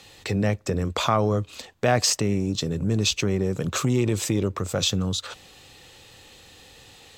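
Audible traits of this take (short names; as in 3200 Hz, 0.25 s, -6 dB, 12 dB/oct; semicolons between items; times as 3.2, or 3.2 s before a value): noise floor -50 dBFS; spectral tilt -4.5 dB/oct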